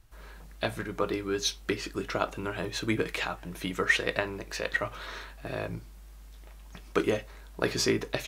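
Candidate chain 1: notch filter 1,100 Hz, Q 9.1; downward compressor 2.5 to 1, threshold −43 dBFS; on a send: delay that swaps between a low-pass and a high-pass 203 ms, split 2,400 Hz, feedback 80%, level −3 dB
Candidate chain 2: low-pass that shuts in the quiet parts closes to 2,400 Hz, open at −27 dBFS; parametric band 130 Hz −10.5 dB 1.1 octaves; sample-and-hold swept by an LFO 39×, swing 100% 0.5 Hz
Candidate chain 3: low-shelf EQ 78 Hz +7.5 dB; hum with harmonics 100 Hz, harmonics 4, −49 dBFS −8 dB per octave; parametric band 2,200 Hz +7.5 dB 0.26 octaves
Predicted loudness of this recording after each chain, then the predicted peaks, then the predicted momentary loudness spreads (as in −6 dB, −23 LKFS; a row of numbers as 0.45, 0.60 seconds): −40.5, −33.0, −30.0 LKFS; −21.0, −11.5, −7.5 dBFS; 8, 15, 19 LU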